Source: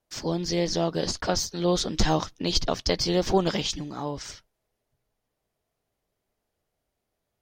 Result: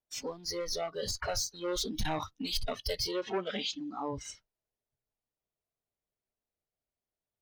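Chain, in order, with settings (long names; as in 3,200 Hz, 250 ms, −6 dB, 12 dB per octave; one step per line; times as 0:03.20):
in parallel at −1.5 dB: downward compressor, threshold −36 dBFS, peak gain reduction 18.5 dB
on the sum: soft clipping −24.5 dBFS, distortion −7 dB
0:03.11–0:04.13: band-pass filter 150–6,000 Hz
noise reduction from a noise print of the clip's start 18 dB
level −2.5 dB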